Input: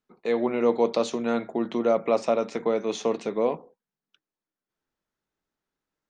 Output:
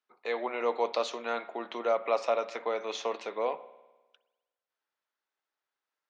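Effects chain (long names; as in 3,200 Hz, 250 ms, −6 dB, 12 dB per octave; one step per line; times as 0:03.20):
band-pass filter 710–4,900 Hz
spring reverb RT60 1.2 s, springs 50 ms, chirp 60 ms, DRR 16.5 dB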